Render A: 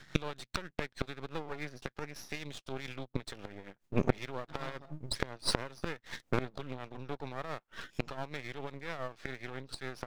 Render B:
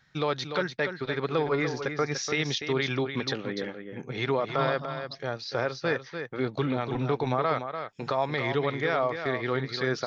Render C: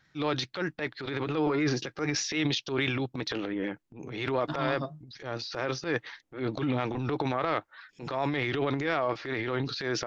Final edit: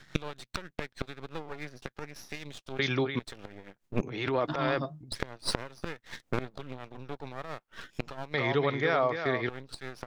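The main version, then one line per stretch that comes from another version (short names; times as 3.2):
A
2.79–3.19 from B
4.01–5.12 from C
8.34–9.49 from B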